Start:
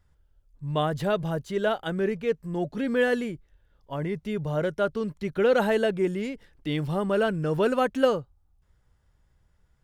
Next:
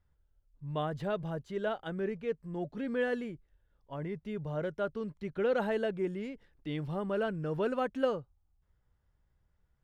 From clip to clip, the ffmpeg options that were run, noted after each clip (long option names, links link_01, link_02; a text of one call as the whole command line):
ffmpeg -i in.wav -af "lowpass=frequency=3100:poles=1,volume=-8dB" out.wav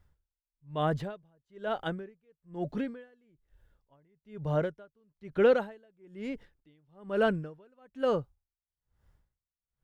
ffmpeg -i in.wav -af "aeval=exprs='val(0)*pow(10,-39*(0.5-0.5*cos(2*PI*1.1*n/s))/20)':channel_layout=same,volume=8dB" out.wav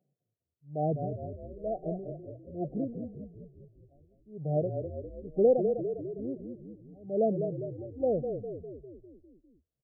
ffmpeg -i in.wav -filter_complex "[0:a]afftfilt=real='re*between(b*sr/4096,120,780)':imag='im*between(b*sr/4096,120,780)':win_size=4096:overlap=0.75,asplit=8[link_01][link_02][link_03][link_04][link_05][link_06][link_07][link_08];[link_02]adelay=201,afreqshift=-31,volume=-6.5dB[link_09];[link_03]adelay=402,afreqshift=-62,volume=-11.4dB[link_10];[link_04]adelay=603,afreqshift=-93,volume=-16.3dB[link_11];[link_05]adelay=804,afreqshift=-124,volume=-21.1dB[link_12];[link_06]adelay=1005,afreqshift=-155,volume=-26dB[link_13];[link_07]adelay=1206,afreqshift=-186,volume=-30.9dB[link_14];[link_08]adelay=1407,afreqshift=-217,volume=-35.8dB[link_15];[link_01][link_09][link_10][link_11][link_12][link_13][link_14][link_15]amix=inputs=8:normalize=0" out.wav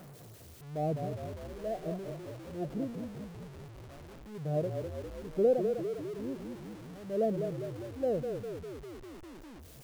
ffmpeg -i in.wav -af "aeval=exprs='val(0)+0.5*0.00944*sgn(val(0))':channel_layout=same,volume=-3.5dB" out.wav